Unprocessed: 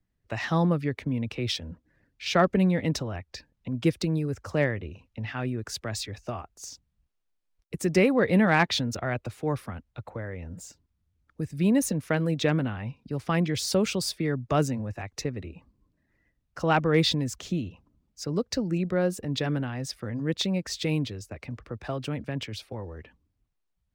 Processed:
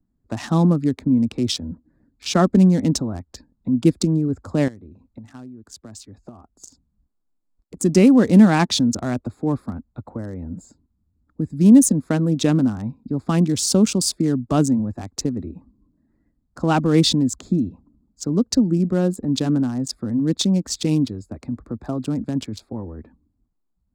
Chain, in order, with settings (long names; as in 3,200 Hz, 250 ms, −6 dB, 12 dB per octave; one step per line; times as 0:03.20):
adaptive Wiener filter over 15 samples
octave-band graphic EQ 125/250/500/2,000/8,000 Hz −4/+10/−6/−10/+10 dB
0:04.68–0:07.77: downward compressor 8 to 1, threshold −43 dBFS, peak gain reduction 20 dB
level +6 dB